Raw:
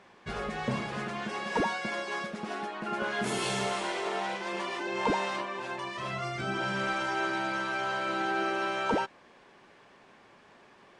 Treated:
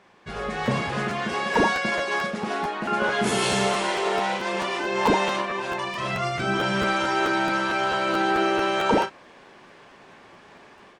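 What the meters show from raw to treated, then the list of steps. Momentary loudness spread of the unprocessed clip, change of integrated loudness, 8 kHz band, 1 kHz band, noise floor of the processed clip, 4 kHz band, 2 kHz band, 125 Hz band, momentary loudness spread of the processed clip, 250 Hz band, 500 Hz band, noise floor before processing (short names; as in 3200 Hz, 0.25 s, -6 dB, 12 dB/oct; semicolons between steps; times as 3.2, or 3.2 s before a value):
6 LU, +8.0 dB, +8.0 dB, +8.0 dB, -50 dBFS, +8.0 dB, +7.0 dB, +8.0 dB, 6 LU, +8.0 dB, +8.5 dB, -58 dBFS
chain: AGC gain up to 7.5 dB; doubler 36 ms -9.5 dB; crackling interface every 0.22 s, samples 512, repeat, from 0.65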